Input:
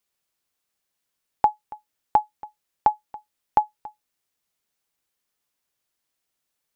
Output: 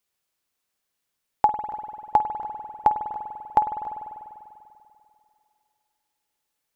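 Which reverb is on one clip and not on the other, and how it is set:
spring reverb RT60 2.6 s, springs 49 ms, chirp 65 ms, DRR 6.5 dB

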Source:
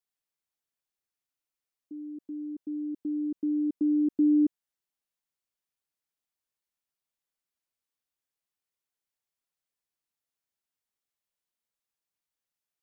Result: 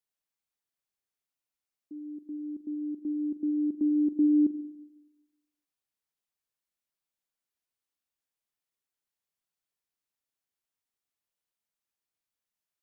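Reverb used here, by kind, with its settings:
spring reverb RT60 1.1 s, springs 36/41/47 ms, chirp 75 ms, DRR 11 dB
level −1.5 dB

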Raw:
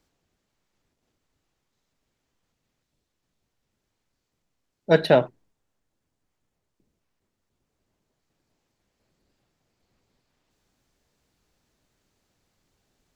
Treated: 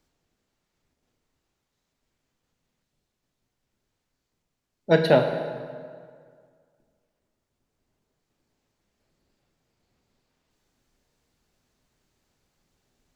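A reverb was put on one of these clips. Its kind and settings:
dense smooth reverb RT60 2 s, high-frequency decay 0.7×, DRR 5.5 dB
level −1.5 dB

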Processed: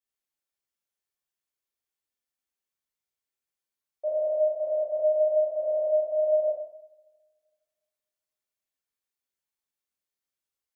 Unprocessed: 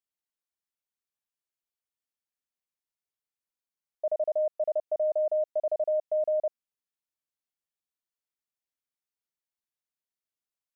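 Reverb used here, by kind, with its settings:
coupled-rooms reverb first 0.74 s, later 2 s, from −25 dB, DRR −7.5 dB
level −6 dB

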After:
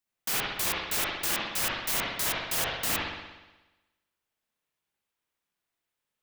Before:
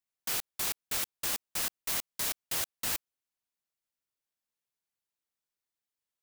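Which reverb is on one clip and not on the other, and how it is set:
spring reverb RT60 1.1 s, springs 60 ms, chirp 80 ms, DRR −5.5 dB
level +2.5 dB

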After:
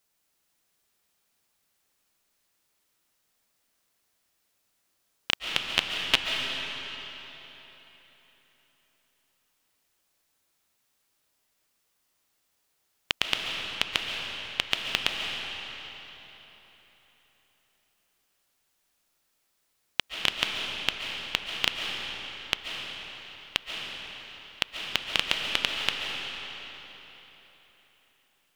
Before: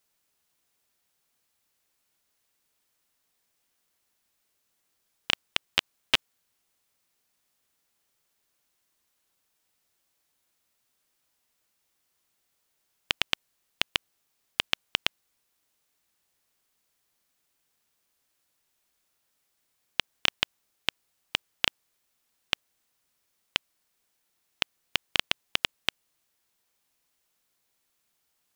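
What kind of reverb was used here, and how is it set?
comb and all-pass reverb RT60 3.9 s, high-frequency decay 0.85×, pre-delay 100 ms, DRR 1 dB

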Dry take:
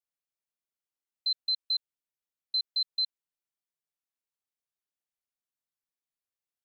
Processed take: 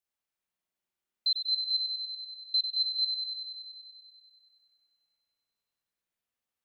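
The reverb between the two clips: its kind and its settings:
spring reverb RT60 2.5 s, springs 50 ms, chirp 50 ms, DRR −3 dB
level +1.5 dB

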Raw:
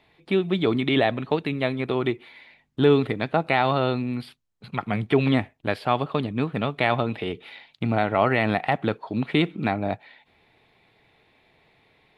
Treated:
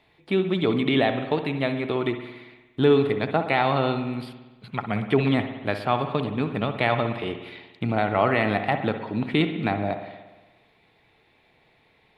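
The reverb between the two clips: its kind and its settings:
spring reverb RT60 1.2 s, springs 58 ms, chirp 40 ms, DRR 7.5 dB
level −1 dB

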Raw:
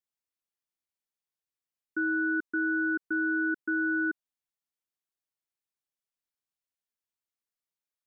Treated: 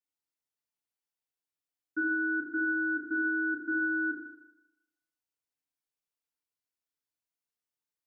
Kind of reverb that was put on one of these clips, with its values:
feedback delay network reverb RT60 0.93 s, low-frequency decay 0.9×, high-frequency decay 0.9×, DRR −4.5 dB
level −7.5 dB

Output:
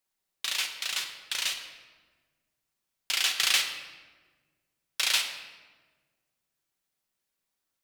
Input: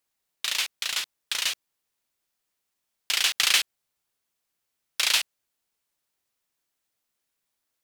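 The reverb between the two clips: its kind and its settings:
rectangular room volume 1,200 cubic metres, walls mixed, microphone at 1.1 metres
level −4 dB

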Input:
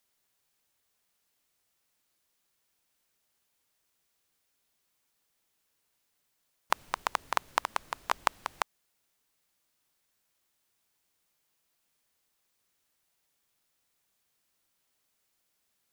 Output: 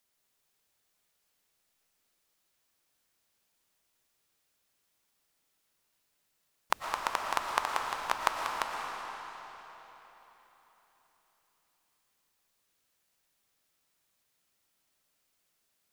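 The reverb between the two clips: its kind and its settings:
comb and all-pass reverb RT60 4 s, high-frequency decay 0.9×, pre-delay 75 ms, DRR 1 dB
level −1.5 dB

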